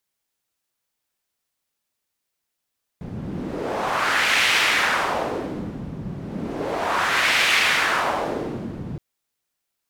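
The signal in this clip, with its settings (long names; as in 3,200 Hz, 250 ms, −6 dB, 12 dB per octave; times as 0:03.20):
wind from filtered noise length 5.97 s, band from 160 Hz, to 2,400 Hz, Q 1.6, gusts 2, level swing 13.5 dB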